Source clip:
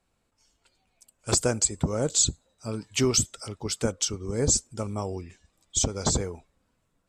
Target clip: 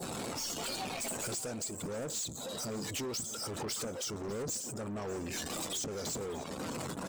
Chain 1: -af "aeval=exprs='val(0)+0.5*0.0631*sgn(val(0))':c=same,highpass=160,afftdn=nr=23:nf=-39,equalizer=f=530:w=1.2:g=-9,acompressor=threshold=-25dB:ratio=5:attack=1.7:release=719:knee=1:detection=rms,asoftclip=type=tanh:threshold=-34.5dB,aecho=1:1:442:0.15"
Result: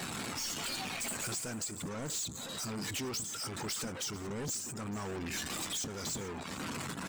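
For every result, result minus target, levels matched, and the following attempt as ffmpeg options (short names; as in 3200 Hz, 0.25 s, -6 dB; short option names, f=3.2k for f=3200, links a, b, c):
echo 0.156 s early; 500 Hz band -4.5 dB; 2000 Hz band +3.5 dB
-af "aeval=exprs='val(0)+0.5*0.0631*sgn(val(0))':c=same,highpass=160,afftdn=nr=23:nf=-39,equalizer=f=530:w=1.2:g=-9,acompressor=threshold=-25dB:ratio=5:attack=1.7:release=719:knee=1:detection=rms,asoftclip=type=tanh:threshold=-34.5dB,aecho=1:1:598:0.15"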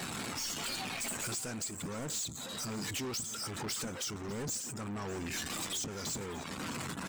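500 Hz band -4.5 dB; 2000 Hz band +3.5 dB
-af "aeval=exprs='val(0)+0.5*0.0631*sgn(val(0))':c=same,highpass=160,afftdn=nr=23:nf=-39,acompressor=threshold=-25dB:ratio=5:attack=1.7:release=719:knee=1:detection=rms,asoftclip=type=tanh:threshold=-34.5dB,aecho=1:1:598:0.15"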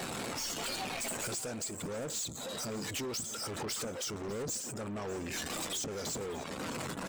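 2000 Hz band +3.0 dB
-af "aeval=exprs='val(0)+0.5*0.0631*sgn(val(0))':c=same,highpass=160,adynamicequalizer=threshold=0.01:dfrequency=1900:dqfactor=0.91:tfrequency=1900:tqfactor=0.91:attack=5:release=100:ratio=0.45:range=2:mode=cutabove:tftype=bell,afftdn=nr=23:nf=-39,acompressor=threshold=-25dB:ratio=5:attack=1.7:release=719:knee=1:detection=rms,asoftclip=type=tanh:threshold=-34.5dB,aecho=1:1:598:0.15"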